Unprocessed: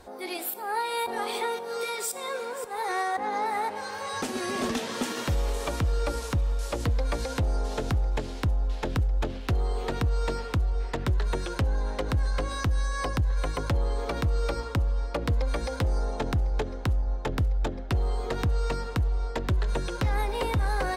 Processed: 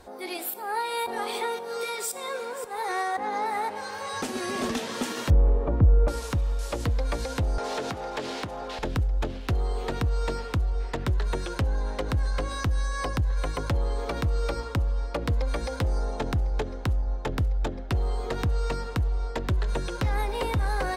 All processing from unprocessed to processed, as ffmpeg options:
-filter_complex "[0:a]asettb=1/sr,asplit=3[a][b][c];[a]atrim=end=5.304[d];[b]atrim=start=5.3:end=6.08,asetpts=PTS-STARTPTS,afade=t=in:d=0.004:c=qsin,afade=t=out:st=0.776:d=0.004:c=qsin,lowpass=1.4k,tiltshelf=f=740:g=8.5[e];[c]atrim=start=6.076[f];[d][e]acrossfade=d=0.004:c1=hsin:c2=qsin[g];[g][f]acrossfade=d=0.004:c1=qsin:c2=hsin,asettb=1/sr,asplit=3[h][i][j];[h]atrim=end=7.584[k];[i]atrim=start=7.58:end=8.79,asetpts=PTS-STARTPTS,afade=t=in:d=0.004:c=qsin,afade=t=out:st=1.206:d=0.004:c=qsin,highpass=130,acompressor=threshold=-36dB:ratio=2:attack=3.2:release=140:knee=1:detection=peak,asplit=2[l][m];[m]highpass=f=720:p=1,volume=20dB,asoftclip=type=tanh:threshold=-20.5dB[n];[l][n]amix=inputs=2:normalize=0,lowpass=f=3.7k:p=1,volume=-6dB[o];[j]atrim=start=8.786[p];[k][o]acrossfade=d=0.004:c1=hsin:c2=qsin[q];[q][p]acrossfade=d=0.004:c1=qsin:c2=hsin"

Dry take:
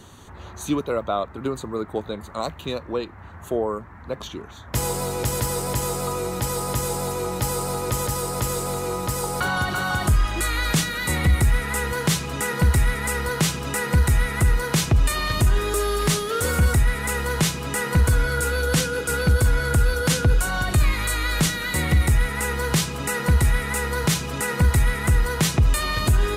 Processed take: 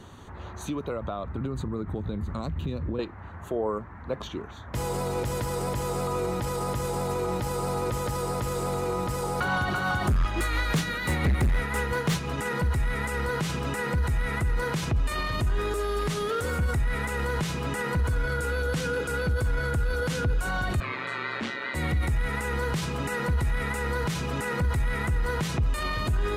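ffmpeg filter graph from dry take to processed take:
-filter_complex "[0:a]asettb=1/sr,asplit=3[a][b][c];[a]atrim=end=0.674[d];[b]atrim=start=0.67:end=2.99,asetpts=PTS-STARTPTS,afade=t=in:d=0.004:c=qsin,afade=t=out:st=2.316:d=0.004:c=qsin,asubboost=boost=10:cutoff=250,acompressor=threshold=-26dB:ratio=12:attack=3.2:release=140:knee=1:detection=peak[e];[c]atrim=start=2.986[f];[d][e]acrossfade=d=0.004:c1=hsin:c2=qsin[g];[g][f]acrossfade=d=0.004:c1=qsin:c2=hsin,asettb=1/sr,asplit=3[h][i][j];[h]atrim=end=9.374[k];[i]atrim=start=9.37:end=12.38,asetpts=PTS-STARTPTS,afade=t=in:d=0.004:c=qsin,afade=t=out:st=3.006:d=0.004:c=qsin,bandreject=f=8k:w=21,tremolo=f=5.8:d=0.32,asoftclip=type=hard:threshold=-19.5dB[l];[j]atrim=start=12.376[m];[k][l]acrossfade=d=0.004:c1=hsin:c2=qsin[n];[n][m]acrossfade=d=0.004:c1=qsin:c2=hsin,asettb=1/sr,asplit=3[o][p][q];[o]atrim=end=20.804[r];[p]atrim=start=20.8:end=21.75,asetpts=PTS-STARTPTS,afade=t=in:d=0.004:c=qsin,afade=t=out:st=0.946:d=0.004:c=qsin,aeval=exprs='val(0)*sin(2*PI*65*n/s)':c=same,highpass=300,lowpass=3.3k,asplit=2[s][t];[t]adelay=40,volume=-11.5dB[u];[s][u]amix=inputs=2:normalize=0,atrim=end_sample=41895[v];[q]atrim=start=21.746[w];[r][v]acrossfade=d=0.004:c1=hsin:c2=qsin[x];[x][w]acrossfade=d=0.004:c1=qsin:c2=hsin,alimiter=limit=-19dB:level=0:latency=1:release=19,highshelf=f=4.4k:g=-11"

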